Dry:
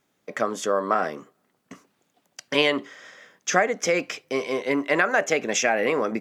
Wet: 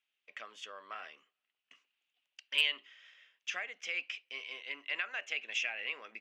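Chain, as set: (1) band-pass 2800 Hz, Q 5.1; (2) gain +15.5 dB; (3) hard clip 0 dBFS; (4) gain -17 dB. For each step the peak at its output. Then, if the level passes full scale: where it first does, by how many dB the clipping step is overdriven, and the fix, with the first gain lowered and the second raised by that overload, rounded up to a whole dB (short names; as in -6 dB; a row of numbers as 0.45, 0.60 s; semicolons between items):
-12.0, +3.5, 0.0, -17.0 dBFS; step 2, 3.5 dB; step 2 +11.5 dB, step 4 -13 dB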